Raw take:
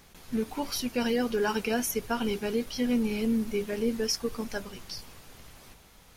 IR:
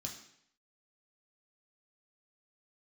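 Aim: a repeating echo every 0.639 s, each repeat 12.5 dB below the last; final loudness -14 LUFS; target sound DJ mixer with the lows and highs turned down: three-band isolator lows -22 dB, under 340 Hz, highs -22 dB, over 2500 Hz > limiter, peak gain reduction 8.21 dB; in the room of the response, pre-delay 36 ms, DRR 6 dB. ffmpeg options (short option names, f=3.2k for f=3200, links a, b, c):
-filter_complex "[0:a]aecho=1:1:639|1278|1917:0.237|0.0569|0.0137,asplit=2[a][b];[1:a]atrim=start_sample=2205,adelay=36[c];[b][c]afir=irnorm=-1:irlink=0,volume=-3.5dB[d];[a][d]amix=inputs=2:normalize=0,acrossover=split=340 2500:gain=0.0794 1 0.0794[e][f][g];[e][f][g]amix=inputs=3:normalize=0,volume=22dB,alimiter=limit=-3.5dB:level=0:latency=1"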